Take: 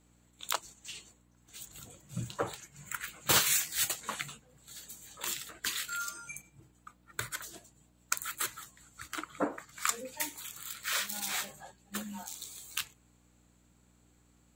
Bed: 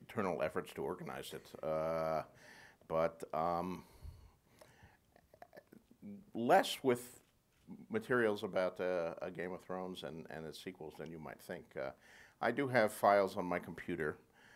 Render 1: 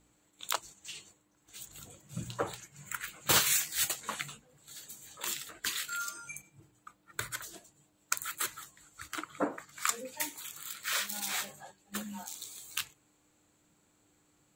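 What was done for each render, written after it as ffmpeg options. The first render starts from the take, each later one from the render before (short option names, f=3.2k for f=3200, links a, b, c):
-af "bandreject=f=60:t=h:w=4,bandreject=f=120:t=h:w=4,bandreject=f=180:t=h:w=4,bandreject=f=240:t=h:w=4"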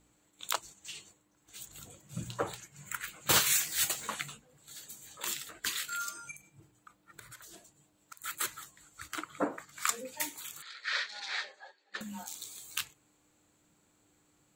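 -filter_complex "[0:a]asettb=1/sr,asplit=3[a][b][c];[a]atrim=end=3.494[d];[b]atrim=start=3.49:end=4.07,asetpts=PTS-STARTPTS,afade=t=in:d=0.004:c=qsin,afade=t=out:st=0.576:d=0.004:c=qsin,aeval=exprs='val(0)+0.5*0.00708*sgn(val(0))':c=same[e];[c]atrim=start=4.066[f];[d][e]acrossfade=d=0.004:c1=hsin:c2=qsin[g];[g][f]acrossfade=d=0.004:c1=qsin:c2=hsin,asettb=1/sr,asplit=3[h][i][j];[h]atrim=end=6.314[k];[i]atrim=start=6.31:end=8.24,asetpts=PTS-STARTPTS,afade=t=in:d=0.004:c=qsin,afade=t=out:st=1.926:d=0.004:c=qsin,acompressor=threshold=-47dB:ratio=6:attack=3.2:release=140:knee=1:detection=peak[l];[j]atrim=start=8.236[m];[k][l]acrossfade=d=0.004:c1=hsin:c2=qsin[n];[n][m]acrossfade=d=0.004:c1=qsin:c2=hsin,asettb=1/sr,asplit=3[o][p][q];[o]atrim=end=10.624[r];[p]atrim=start=10.62:end=12.01,asetpts=PTS-STARTPTS,afade=t=in:d=0.004:c=qsin,afade=t=out:st=1.386:d=0.004:c=qsin,highpass=f=430:w=0.5412,highpass=f=430:w=1.3066,equalizer=f=690:t=q:w=4:g=-6,equalizer=f=1.1k:t=q:w=4:g=-5,equalizer=f=1.8k:t=q:w=4:g=6,equalizer=f=2.9k:t=q:w=4:g=-5,equalizer=f=4.4k:t=q:w=4:g=5,lowpass=f=4.7k:w=0.5412,lowpass=f=4.7k:w=1.3066[s];[q]atrim=start=12.006[t];[r][s]acrossfade=d=0.004:c1=hsin:c2=qsin[u];[u][t]acrossfade=d=0.004:c1=qsin:c2=hsin"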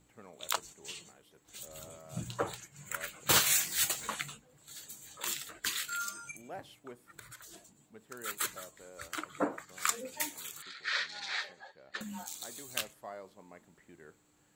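-filter_complex "[1:a]volume=-16dB[a];[0:a][a]amix=inputs=2:normalize=0"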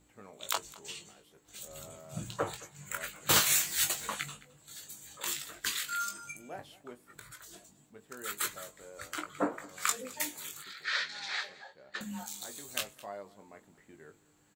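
-filter_complex "[0:a]asplit=2[a][b];[b]adelay=20,volume=-7dB[c];[a][c]amix=inputs=2:normalize=0,aecho=1:1:215:0.0891"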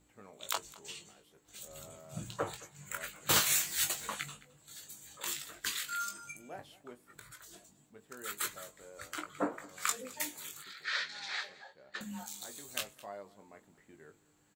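-af "volume=-2.5dB"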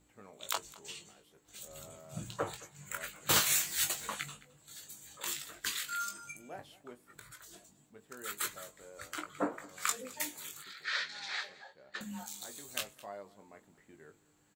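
-af anull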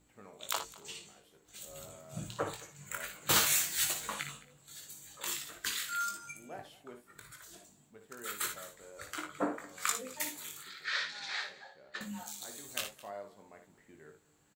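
-af "aecho=1:1:58|71:0.376|0.168"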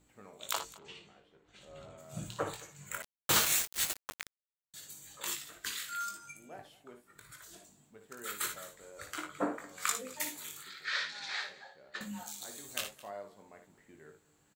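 -filter_complex "[0:a]asplit=3[a][b][c];[a]afade=t=out:st=0.77:d=0.02[d];[b]lowpass=2.9k,afade=t=in:st=0.77:d=0.02,afade=t=out:st=1.97:d=0.02[e];[c]afade=t=in:st=1.97:d=0.02[f];[d][e][f]amix=inputs=3:normalize=0,asettb=1/sr,asplit=3[g][h][i];[g]atrim=end=3.024[j];[h]atrim=start=3.02:end=4.74,asetpts=PTS-STARTPTS,afade=t=in:d=0.004:c=qsin,afade=t=out:st=1.716:d=0.004:c=qsin,aeval=exprs='val(0)*gte(abs(val(0)),0.0316)':c=same[k];[i]atrim=start=4.736[l];[j][k]acrossfade=d=0.004:c1=hsin:c2=qsin[m];[m][l]acrossfade=d=0.004:c1=qsin:c2=hsin,asplit=3[n][o][p];[n]atrim=end=5.352[q];[o]atrim=start=5.348:end=7.292,asetpts=PTS-STARTPTS,volume=-3dB[r];[p]atrim=start=7.288[s];[q][r]acrossfade=d=0.004:c1=hsin:c2=hsin[t];[t][s]acrossfade=d=0.004:c1=hsin:c2=hsin"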